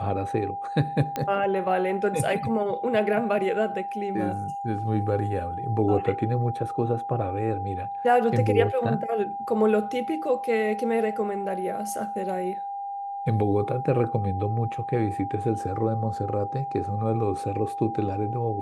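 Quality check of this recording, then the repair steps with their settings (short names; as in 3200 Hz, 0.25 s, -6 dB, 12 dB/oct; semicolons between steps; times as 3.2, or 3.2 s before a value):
tone 800 Hz -30 dBFS
1.16 pop -14 dBFS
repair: de-click; notch 800 Hz, Q 30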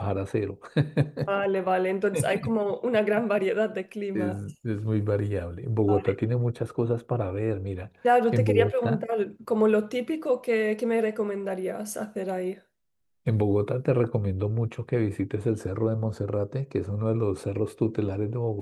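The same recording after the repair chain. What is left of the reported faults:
1.16 pop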